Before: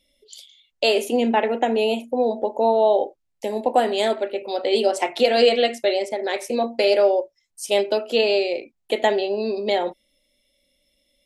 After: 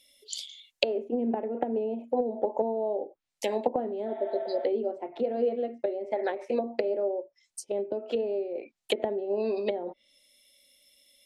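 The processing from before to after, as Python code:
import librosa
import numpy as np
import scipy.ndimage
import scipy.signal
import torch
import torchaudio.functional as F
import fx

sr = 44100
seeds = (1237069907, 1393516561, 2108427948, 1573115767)

y = fx.tilt_eq(x, sr, slope=3.0)
y = fx.env_lowpass_down(y, sr, base_hz=330.0, full_db=-19.5)
y = fx.spec_repair(y, sr, seeds[0], start_s=4.1, length_s=0.53, low_hz=640.0, high_hz=3900.0, source='before')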